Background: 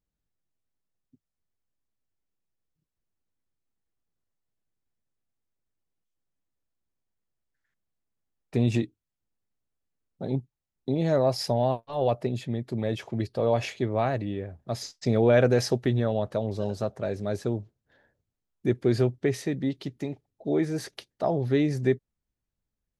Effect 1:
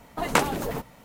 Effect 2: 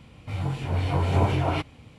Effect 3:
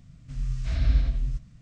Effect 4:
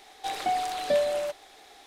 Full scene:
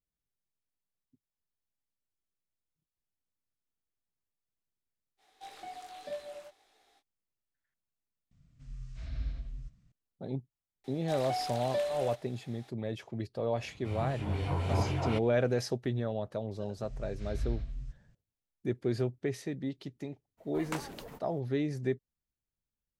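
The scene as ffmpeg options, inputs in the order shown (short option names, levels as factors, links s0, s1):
-filter_complex "[4:a]asplit=2[s0][s1];[3:a]asplit=2[s2][s3];[0:a]volume=0.398[s4];[s0]flanger=delay=18:depth=3.7:speed=1.9[s5];[s4]asplit=2[s6][s7];[s6]atrim=end=8.314[s8];[s2]atrim=end=1.61,asetpts=PTS-STARTPTS,volume=0.188[s9];[s7]atrim=start=9.916[s10];[s5]atrim=end=1.86,asetpts=PTS-STARTPTS,volume=0.211,afade=t=in:d=0.05,afade=t=out:st=1.81:d=0.05,adelay=227997S[s11];[s1]atrim=end=1.86,asetpts=PTS-STARTPTS,volume=0.398,afade=t=in:d=0.004:c=hsin,afade=t=out:st=1.856:d=0.004:c=hsin,adelay=10840[s12];[2:a]atrim=end=1.98,asetpts=PTS-STARTPTS,volume=0.398,afade=t=in:d=0.004:c=hsin,afade=t=out:st=1.976:d=0.004:c=hsin,adelay=13570[s13];[s3]atrim=end=1.61,asetpts=PTS-STARTPTS,volume=0.237,afade=t=in:d=0.004:c=hsin,afade=t=out:st=1.606:d=0.004:c=hsin,adelay=16540[s14];[1:a]atrim=end=1.04,asetpts=PTS-STARTPTS,volume=0.141,afade=t=in:d=0.02,afade=t=out:st=1.02:d=0.02,adelay=20370[s15];[s8][s9]acrossfade=d=0.004:c1=hsin:c2=hsin[s16];[s16][s10]acrossfade=d=0.004:c1=hsin:c2=hsin[s17];[s17][s11][s12][s13][s14][s15]amix=inputs=6:normalize=0"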